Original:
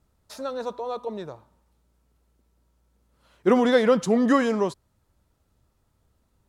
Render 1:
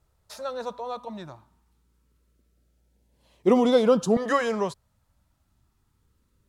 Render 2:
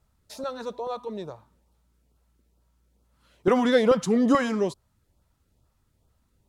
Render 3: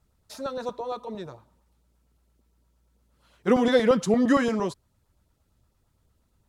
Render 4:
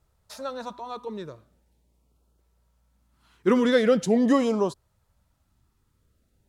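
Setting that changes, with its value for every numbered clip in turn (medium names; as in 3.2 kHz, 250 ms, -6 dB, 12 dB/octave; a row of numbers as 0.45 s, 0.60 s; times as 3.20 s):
LFO notch, rate: 0.24 Hz, 2.3 Hz, 8.7 Hz, 0.42 Hz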